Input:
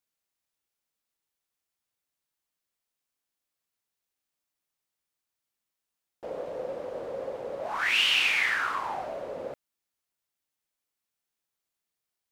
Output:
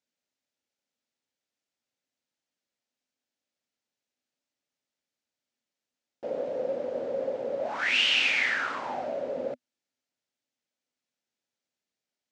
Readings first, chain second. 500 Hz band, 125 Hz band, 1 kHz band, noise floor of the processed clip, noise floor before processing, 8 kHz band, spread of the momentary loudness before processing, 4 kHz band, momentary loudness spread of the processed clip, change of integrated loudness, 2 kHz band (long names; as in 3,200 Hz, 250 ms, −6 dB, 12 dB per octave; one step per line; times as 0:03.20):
+4.5 dB, −0.5 dB, −2.0 dB, below −85 dBFS, below −85 dBFS, −2.5 dB, 17 LU, 0.0 dB, 14 LU, 0.0 dB, −0.5 dB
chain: loudspeaker in its box 100–7,200 Hz, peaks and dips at 250 Hz +10 dB, 560 Hz +6 dB, 1,100 Hz −7 dB